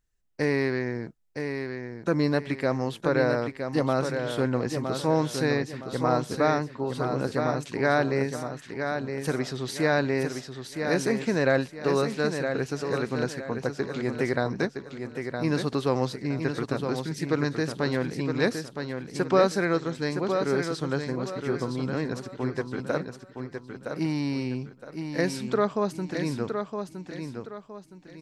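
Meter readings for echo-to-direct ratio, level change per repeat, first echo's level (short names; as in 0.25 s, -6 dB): -6.0 dB, -9.5 dB, -6.5 dB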